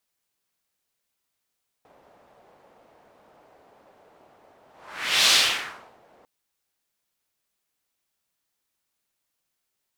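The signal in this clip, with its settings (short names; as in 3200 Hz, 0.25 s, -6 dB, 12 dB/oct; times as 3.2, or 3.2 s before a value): whoosh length 4.40 s, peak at 3.45, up 0.66 s, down 0.74 s, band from 650 Hz, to 3900 Hz, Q 1.6, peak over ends 39 dB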